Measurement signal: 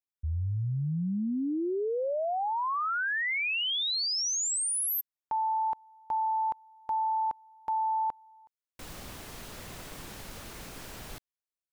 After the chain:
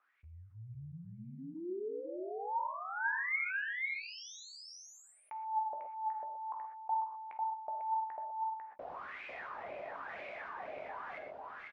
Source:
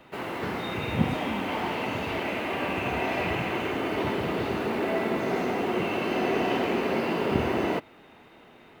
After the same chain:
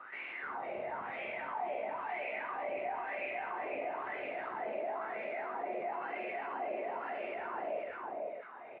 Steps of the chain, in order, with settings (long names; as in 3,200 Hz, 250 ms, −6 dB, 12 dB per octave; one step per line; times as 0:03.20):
mains-hum notches 50/100/150/200/250/300 Hz
reverb reduction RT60 0.58 s
dynamic equaliser 1,200 Hz, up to −4 dB, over −47 dBFS, Q 1.6
brickwall limiter −22.5 dBFS
LFO wah 1 Hz 590–2,400 Hz, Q 11
head-to-tape spacing loss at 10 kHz 31 dB
double-tracking delay 14 ms −10.5 dB
on a send: single-tap delay 497 ms −5 dB
on the sum: reverb whose tail is shaped and stops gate 150 ms flat, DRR 5 dB
envelope flattener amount 50%
level +4.5 dB